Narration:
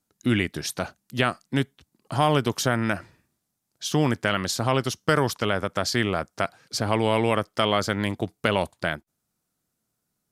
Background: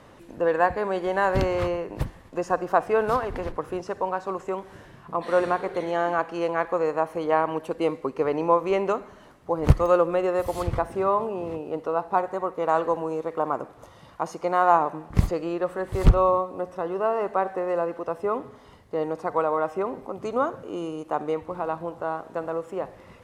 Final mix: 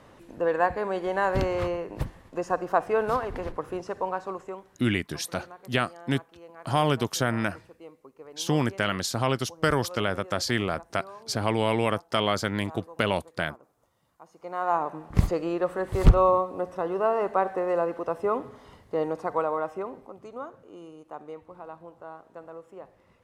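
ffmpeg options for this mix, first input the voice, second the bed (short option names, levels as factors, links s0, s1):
-filter_complex "[0:a]adelay=4550,volume=0.75[s0];[1:a]volume=9.44,afade=t=out:st=4.17:d=0.65:silence=0.105925,afade=t=in:st=14.31:d=1:silence=0.0794328,afade=t=out:st=18.96:d=1.32:silence=0.211349[s1];[s0][s1]amix=inputs=2:normalize=0"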